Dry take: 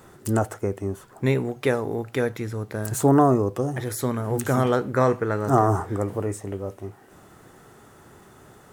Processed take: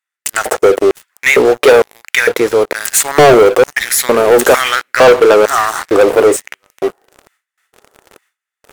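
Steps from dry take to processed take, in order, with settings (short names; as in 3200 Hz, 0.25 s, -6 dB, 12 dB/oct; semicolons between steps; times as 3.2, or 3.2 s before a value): LFO high-pass square 1.1 Hz 480–2100 Hz; gate with hold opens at -43 dBFS; sample leveller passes 5; gain +2 dB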